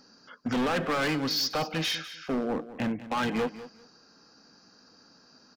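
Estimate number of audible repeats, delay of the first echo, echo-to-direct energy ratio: 2, 198 ms, -15.0 dB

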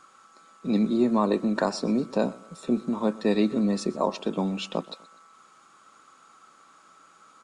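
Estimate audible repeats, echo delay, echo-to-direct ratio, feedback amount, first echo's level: 2, 124 ms, -20.5 dB, 40%, -21.0 dB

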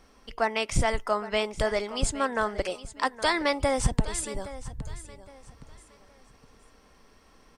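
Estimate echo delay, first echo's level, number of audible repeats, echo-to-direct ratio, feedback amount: 816 ms, -15.5 dB, 2, -15.0 dB, 31%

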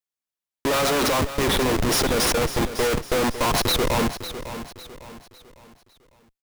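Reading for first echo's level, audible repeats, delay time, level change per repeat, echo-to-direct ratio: -12.0 dB, 3, 553 ms, -8.0 dB, -11.5 dB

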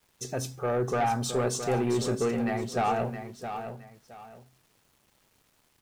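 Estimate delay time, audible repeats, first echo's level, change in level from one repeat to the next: 667 ms, 2, -9.0 dB, -11.5 dB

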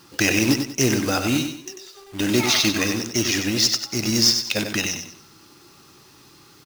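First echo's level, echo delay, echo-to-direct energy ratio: -7.0 dB, 95 ms, -6.5 dB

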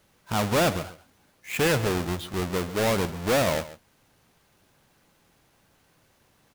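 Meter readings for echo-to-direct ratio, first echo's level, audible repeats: -16.0 dB, -16.0 dB, 1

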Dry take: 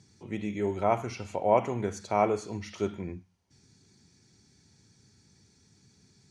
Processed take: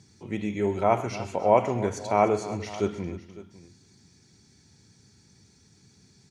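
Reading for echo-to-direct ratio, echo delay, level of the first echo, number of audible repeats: -12.5 dB, 129 ms, -17.5 dB, 3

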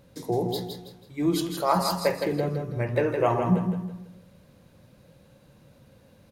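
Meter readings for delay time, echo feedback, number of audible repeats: 163 ms, 34%, 4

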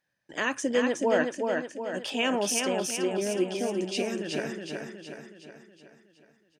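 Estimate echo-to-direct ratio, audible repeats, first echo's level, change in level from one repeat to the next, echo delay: -2.5 dB, 6, -4.0 dB, -6.0 dB, 369 ms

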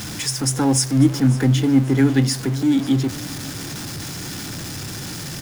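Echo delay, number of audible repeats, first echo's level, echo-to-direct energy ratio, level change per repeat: 544 ms, 2, -18.0 dB, -17.5 dB, -9.0 dB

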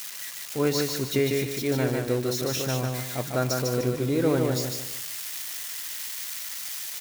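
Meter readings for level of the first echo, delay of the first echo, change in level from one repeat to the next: -3.5 dB, 150 ms, -9.5 dB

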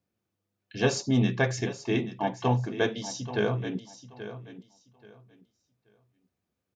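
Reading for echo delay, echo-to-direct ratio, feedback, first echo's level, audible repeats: 831 ms, -13.0 dB, 22%, -13.0 dB, 2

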